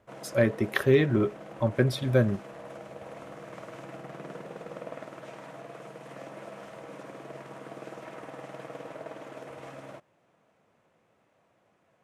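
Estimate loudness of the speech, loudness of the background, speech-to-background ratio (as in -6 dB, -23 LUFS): -26.0 LUFS, -43.5 LUFS, 17.5 dB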